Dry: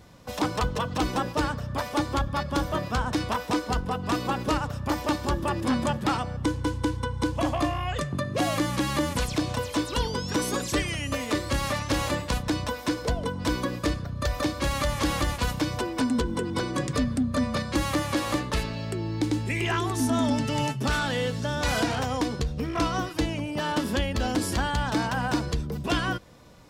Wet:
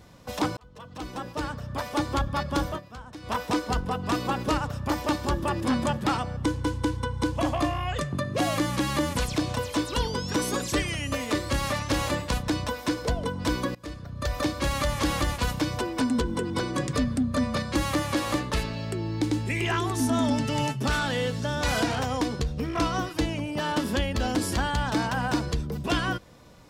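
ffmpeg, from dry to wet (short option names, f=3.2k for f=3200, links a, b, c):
-filter_complex "[0:a]asplit=5[a][b][c][d][e];[a]atrim=end=0.57,asetpts=PTS-STARTPTS,afade=t=out:st=0.566:d=0.004:c=hsin[f];[b]atrim=start=0.57:end=2.81,asetpts=PTS-STARTPTS,afade=t=in:d=1.54,afade=t=out:st=2.11:d=0.13:silence=0.16788[g];[c]atrim=start=2.81:end=3.22,asetpts=PTS-STARTPTS,volume=-15.5dB[h];[d]atrim=start=3.22:end=13.75,asetpts=PTS-STARTPTS,afade=t=in:d=0.13:silence=0.16788,afade=t=out:st=10.526:d=0.004:c=hsin:silence=0.0749894[i];[e]atrim=start=13.75,asetpts=PTS-STARTPTS,afade=t=in:d=0.64:silence=0.0749894[j];[f][g][h][i][j]concat=n=5:v=0:a=1"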